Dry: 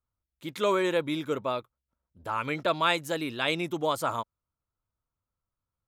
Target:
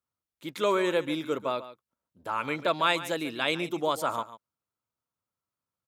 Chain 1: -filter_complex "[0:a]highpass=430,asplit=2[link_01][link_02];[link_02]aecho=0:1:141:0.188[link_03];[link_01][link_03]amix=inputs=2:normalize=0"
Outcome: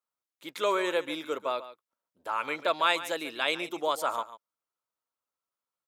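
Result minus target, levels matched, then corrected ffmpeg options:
125 Hz band −13.0 dB
-filter_complex "[0:a]highpass=160,asplit=2[link_01][link_02];[link_02]aecho=0:1:141:0.188[link_03];[link_01][link_03]amix=inputs=2:normalize=0"

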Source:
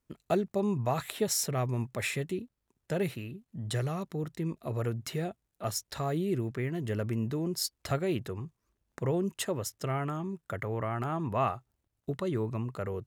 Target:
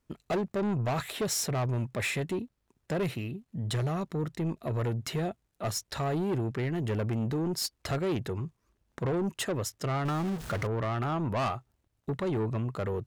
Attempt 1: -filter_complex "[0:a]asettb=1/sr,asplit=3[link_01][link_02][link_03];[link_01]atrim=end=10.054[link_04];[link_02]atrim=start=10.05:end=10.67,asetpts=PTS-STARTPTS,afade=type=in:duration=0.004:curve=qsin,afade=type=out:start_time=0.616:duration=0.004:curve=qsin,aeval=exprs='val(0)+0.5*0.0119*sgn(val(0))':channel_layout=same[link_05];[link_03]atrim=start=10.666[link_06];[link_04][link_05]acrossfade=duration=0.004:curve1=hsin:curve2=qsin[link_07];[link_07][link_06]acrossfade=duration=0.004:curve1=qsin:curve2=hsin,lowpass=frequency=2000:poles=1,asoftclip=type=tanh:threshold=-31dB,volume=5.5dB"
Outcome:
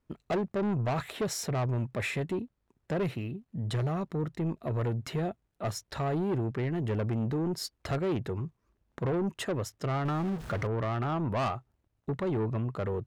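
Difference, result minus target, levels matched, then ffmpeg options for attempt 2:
8,000 Hz band −5.5 dB
-filter_complex "[0:a]asettb=1/sr,asplit=3[link_01][link_02][link_03];[link_01]atrim=end=10.054[link_04];[link_02]atrim=start=10.05:end=10.67,asetpts=PTS-STARTPTS,afade=type=in:duration=0.004:curve=qsin,afade=type=out:start_time=0.616:duration=0.004:curve=qsin,aeval=exprs='val(0)+0.5*0.0119*sgn(val(0))':channel_layout=same[link_05];[link_03]atrim=start=10.666[link_06];[link_04][link_05]acrossfade=duration=0.004:curve1=hsin:curve2=qsin[link_07];[link_07][link_06]acrossfade=duration=0.004:curve1=qsin:curve2=hsin,lowpass=frequency=6700:poles=1,asoftclip=type=tanh:threshold=-31dB,volume=5.5dB"

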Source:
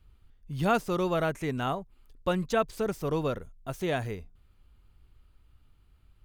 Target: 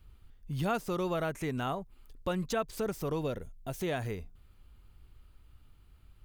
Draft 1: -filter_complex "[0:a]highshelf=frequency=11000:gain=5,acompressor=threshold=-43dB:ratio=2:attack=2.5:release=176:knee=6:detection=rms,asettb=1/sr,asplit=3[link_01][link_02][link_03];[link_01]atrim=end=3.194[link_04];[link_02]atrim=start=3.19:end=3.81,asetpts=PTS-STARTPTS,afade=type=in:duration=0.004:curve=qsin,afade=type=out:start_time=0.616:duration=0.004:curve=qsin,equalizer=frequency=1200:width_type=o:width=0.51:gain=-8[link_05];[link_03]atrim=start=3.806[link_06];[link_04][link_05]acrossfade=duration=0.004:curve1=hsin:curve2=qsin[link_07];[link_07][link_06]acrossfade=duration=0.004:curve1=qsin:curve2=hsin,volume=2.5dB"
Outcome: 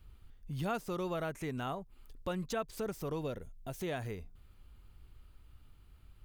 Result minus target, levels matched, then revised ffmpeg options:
downward compressor: peak gain reduction +4 dB
-filter_complex "[0:a]highshelf=frequency=11000:gain=5,acompressor=threshold=-34.5dB:ratio=2:attack=2.5:release=176:knee=6:detection=rms,asettb=1/sr,asplit=3[link_01][link_02][link_03];[link_01]atrim=end=3.194[link_04];[link_02]atrim=start=3.19:end=3.81,asetpts=PTS-STARTPTS,afade=type=in:duration=0.004:curve=qsin,afade=type=out:start_time=0.616:duration=0.004:curve=qsin,equalizer=frequency=1200:width_type=o:width=0.51:gain=-8[link_05];[link_03]atrim=start=3.806[link_06];[link_04][link_05]acrossfade=duration=0.004:curve1=hsin:curve2=qsin[link_07];[link_07][link_06]acrossfade=duration=0.004:curve1=qsin:curve2=hsin,volume=2.5dB"

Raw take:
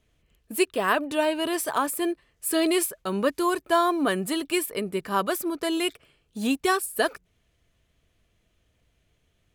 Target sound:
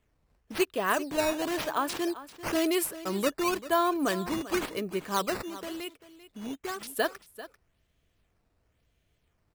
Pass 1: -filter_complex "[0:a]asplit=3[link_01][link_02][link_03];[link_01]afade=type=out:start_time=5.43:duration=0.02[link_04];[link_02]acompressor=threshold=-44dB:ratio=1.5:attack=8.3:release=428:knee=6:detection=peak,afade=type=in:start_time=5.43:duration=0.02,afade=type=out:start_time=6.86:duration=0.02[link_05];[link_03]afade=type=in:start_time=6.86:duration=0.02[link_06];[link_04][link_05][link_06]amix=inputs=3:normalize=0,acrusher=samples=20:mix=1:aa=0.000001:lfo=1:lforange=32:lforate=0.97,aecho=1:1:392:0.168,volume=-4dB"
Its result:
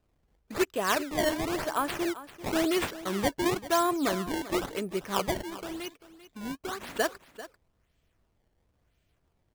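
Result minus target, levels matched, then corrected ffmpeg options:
sample-and-hold swept by an LFO: distortion +7 dB
-filter_complex "[0:a]asplit=3[link_01][link_02][link_03];[link_01]afade=type=out:start_time=5.43:duration=0.02[link_04];[link_02]acompressor=threshold=-44dB:ratio=1.5:attack=8.3:release=428:knee=6:detection=peak,afade=type=in:start_time=5.43:duration=0.02,afade=type=out:start_time=6.86:duration=0.02[link_05];[link_03]afade=type=in:start_time=6.86:duration=0.02[link_06];[link_04][link_05][link_06]amix=inputs=3:normalize=0,acrusher=samples=8:mix=1:aa=0.000001:lfo=1:lforange=12.8:lforate=0.97,aecho=1:1:392:0.168,volume=-4dB"

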